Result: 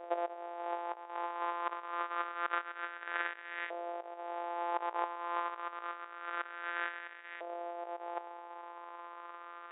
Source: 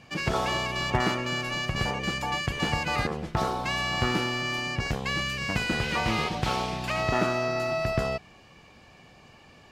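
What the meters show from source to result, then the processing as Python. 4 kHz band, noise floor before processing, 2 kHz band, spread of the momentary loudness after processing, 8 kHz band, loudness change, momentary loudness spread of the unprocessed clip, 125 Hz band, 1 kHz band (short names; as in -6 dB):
-23.0 dB, -54 dBFS, -11.5 dB, 12 LU, under -40 dB, -11.5 dB, 4 LU, under -40 dB, -6.0 dB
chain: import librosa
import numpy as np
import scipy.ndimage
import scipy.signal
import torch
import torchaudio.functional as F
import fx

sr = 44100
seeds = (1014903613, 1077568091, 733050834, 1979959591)

y = np.r_[np.sort(x[:len(x) // 256 * 256].reshape(-1, 256), axis=1).ravel(), x[len(x) // 256 * 256:]]
y = fx.over_compress(y, sr, threshold_db=-35.0, ratio=-0.5)
y = fx.filter_lfo_bandpass(y, sr, shape='saw_up', hz=0.27, low_hz=640.0, high_hz=1900.0, q=3.5)
y = fx.brickwall_bandpass(y, sr, low_hz=320.0, high_hz=3800.0)
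y = y * 10.0 ** (9.0 / 20.0)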